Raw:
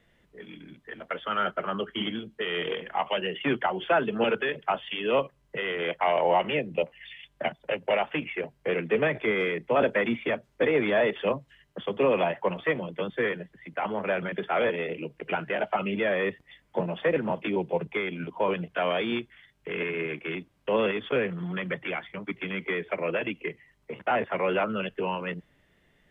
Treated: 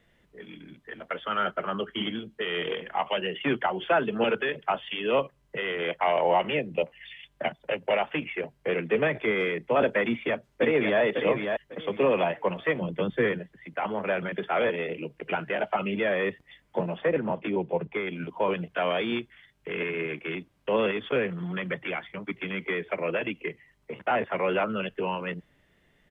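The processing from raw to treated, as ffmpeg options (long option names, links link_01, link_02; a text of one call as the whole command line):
ffmpeg -i in.wav -filter_complex "[0:a]asplit=2[link_01][link_02];[link_02]afade=type=in:start_time=10.06:duration=0.01,afade=type=out:start_time=11.01:duration=0.01,aecho=0:1:550|1100|1650:0.562341|0.112468|0.0224937[link_03];[link_01][link_03]amix=inputs=2:normalize=0,asettb=1/sr,asplit=3[link_04][link_05][link_06];[link_04]atrim=end=12.814[link_07];[link_05]atrim=start=12.81:end=13.39,asetpts=PTS-STARTPTS,afade=type=in:duration=0.004:curve=qsin,afade=type=out:start_time=0.576:duration=0.004:curve=qsin,lowshelf=frequency=290:gain=9[link_08];[link_06]atrim=start=13.386[link_09];[link_07][link_08]acrossfade=duration=0.004:curve1=hsin:curve2=qsin[link_10];[link_10][link_09]acrossfade=duration=0.004:curve1=qsin:curve2=hsin,asettb=1/sr,asplit=3[link_11][link_12][link_13];[link_11]atrim=end=16.964[link_14];[link_12]atrim=start=16.96:end=18.07,asetpts=PTS-STARTPTS,afade=type=in:duration=0.004:curve=qsin,afade=type=out:start_time=1.106:duration=0.004:curve=qsin,lowpass=frequency=2300:poles=1[link_15];[link_13]atrim=start=18.066[link_16];[link_14][link_15]acrossfade=duration=0.004:curve1=hsin:curve2=qsin[link_17];[link_17][link_16]acrossfade=duration=0.004:curve1=qsin:curve2=hsin" out.wav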